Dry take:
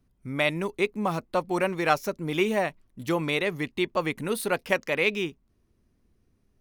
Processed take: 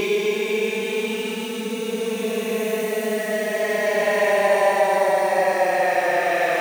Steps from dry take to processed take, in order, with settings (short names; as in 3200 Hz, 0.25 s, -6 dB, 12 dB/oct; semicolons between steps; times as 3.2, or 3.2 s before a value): zero-crossing step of -32 dBFS; HPF 370 Hz 12 dB/oct; Paulstretch 32×, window 0.05 s, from 2.44; gain +4.5 dB